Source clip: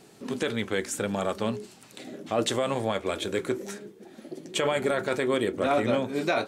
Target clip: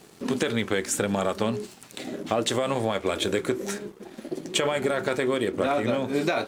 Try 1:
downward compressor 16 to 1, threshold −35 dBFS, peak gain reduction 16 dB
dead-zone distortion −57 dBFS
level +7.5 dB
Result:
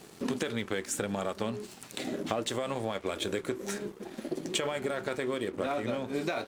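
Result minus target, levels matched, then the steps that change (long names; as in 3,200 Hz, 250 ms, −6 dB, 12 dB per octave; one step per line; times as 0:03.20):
downward compressor: peak gain reduction +7 dB
change: downward compressor 16 to 1, threshold −27.5 dBFS, peak gain reduction 9 dB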